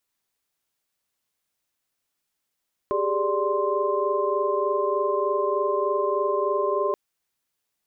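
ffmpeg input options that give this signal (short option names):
-f lavfi -i "aevalsrc='0.0473*(sin(2*PI*392*t)+sin(2*PI*415.3*t)+sin(2*PI*587.33*t)+sin(2*PI*1046.5*t))':d=4.03:s=44100"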